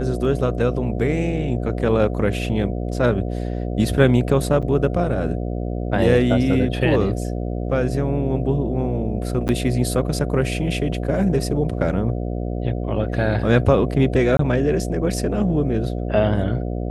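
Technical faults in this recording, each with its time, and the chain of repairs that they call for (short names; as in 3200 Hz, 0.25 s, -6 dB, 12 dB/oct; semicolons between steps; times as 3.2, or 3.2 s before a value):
buzz 60 Hz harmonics 12 -25 dBFS
4.62–4.63 gap 6.7 ms
9.48–9.49 gap 9.5 ms
14.37–14.39 gap 23 ms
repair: de-hum 60 Hz, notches 12; interpolate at 4.62, 6.7 ms; interpolate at 9.48, 9.5 ms; interpolate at 14.37, 23 ms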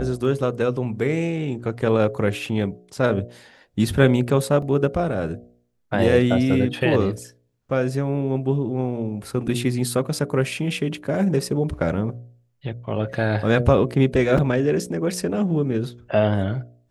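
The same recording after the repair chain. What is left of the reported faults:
none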